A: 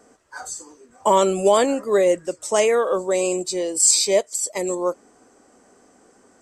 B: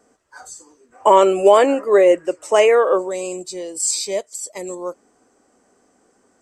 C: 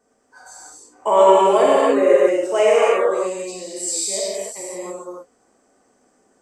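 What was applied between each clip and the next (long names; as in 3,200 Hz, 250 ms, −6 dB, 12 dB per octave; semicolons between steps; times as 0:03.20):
gain on a spectral selection 0:00.92–0:03.08, 270–3,100 Hz +10 dB; level −5 dB
reverb whose tail is shaped and stops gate 340 ms flat, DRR −7.5 dB; level −9 dB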